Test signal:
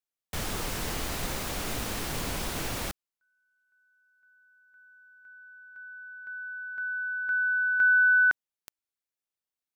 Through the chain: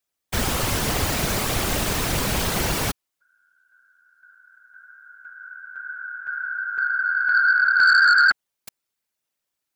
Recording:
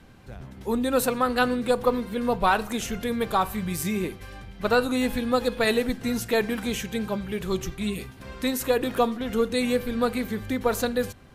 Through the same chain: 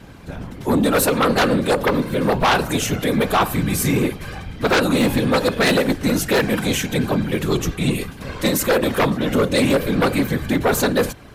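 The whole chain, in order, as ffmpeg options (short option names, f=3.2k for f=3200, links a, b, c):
-af "afftfilt=real='hypot(re,im)*cos(2*PI*random(0))':imag='hypot(re,im)*sin(2*PI*random(1))':win_size=512:overlap=0.75,aeval=exprs='0.266*sin(PI/2*3.98*val(0)/0.266)':c=same"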